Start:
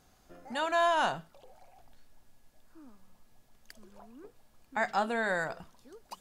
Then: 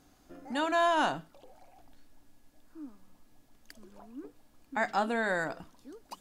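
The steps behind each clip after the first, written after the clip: peaking EQ 290 Hz +12.5 dB 0.33 oct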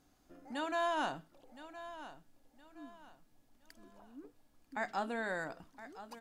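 feedback delay 1017 ms, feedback 32%, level -14 dB; trim -7.5 dB

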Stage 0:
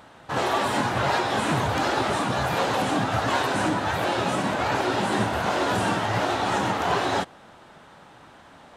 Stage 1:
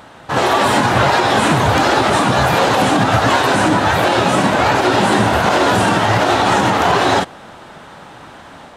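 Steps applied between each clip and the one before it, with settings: level rider gain up to 3 dB; peak limiter -13 dBFS, peak gain reduction 5 dB; trim +9 dB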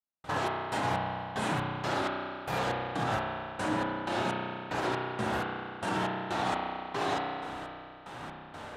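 compression 4:1, threshold -25 dBFS, peak gain reduction 13 dB; trance gate "...xxx...xxx.." 188 bpm -60 dB; spring tank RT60 2.3 s, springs 32 ms, chirp 60 ms, DRR -1 dB; trim -7 dB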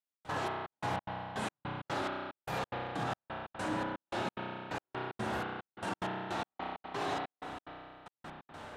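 in parallel at -6 dB: hard clipper -27 dBFS, distortion -15 dB; on the sum: trance gate "xx.xxxxx.." 182 bpm -60 dB; trim -7.5 dB

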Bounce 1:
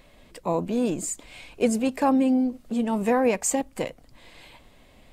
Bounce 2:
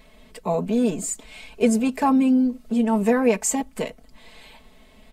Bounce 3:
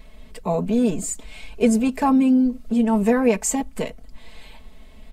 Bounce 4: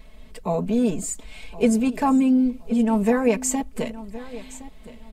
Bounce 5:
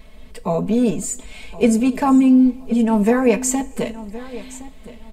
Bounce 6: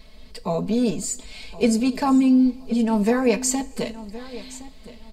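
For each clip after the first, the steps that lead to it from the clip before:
comb 4.6 ms, depth 79%
bass shelf 99 Hz +11.5 dB
feedback delay 1067 ms, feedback 25%, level -17 dB; trim -1.5 dB
two-slope reverb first 0.33 s, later 1.7 s, from -17 dB, DRR 12 dB; trim +3.5 dB
peaking EQ 4.6 kHz +13.5 dB 0.54 oct; trim -4 dB

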